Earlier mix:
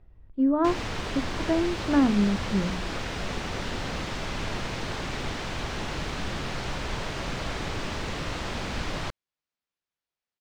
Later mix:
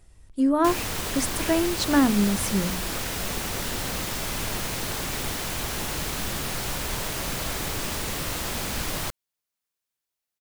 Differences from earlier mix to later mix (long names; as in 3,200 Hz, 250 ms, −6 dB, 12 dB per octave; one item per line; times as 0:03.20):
speech: remove head-to-tape spacing loss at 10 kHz 35 dB
master: remove high-frequency loss of the air 140 metres